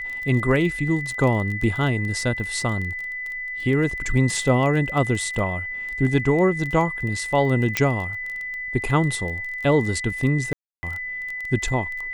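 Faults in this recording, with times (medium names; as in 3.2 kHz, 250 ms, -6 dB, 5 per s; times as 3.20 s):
crackle 22 per s -28 dBFS
whine 2 kHz -28 dBFS
7.77 s: pop -4 dBFS
10.53–10.83 s: dropout 300 ms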